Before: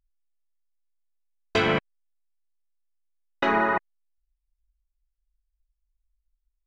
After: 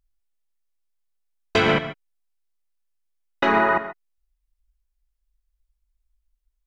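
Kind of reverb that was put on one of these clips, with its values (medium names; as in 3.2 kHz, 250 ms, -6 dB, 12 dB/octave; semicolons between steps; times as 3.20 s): gated-style reverb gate 160 ms rising, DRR 10.5 dB; trim +3.5 dB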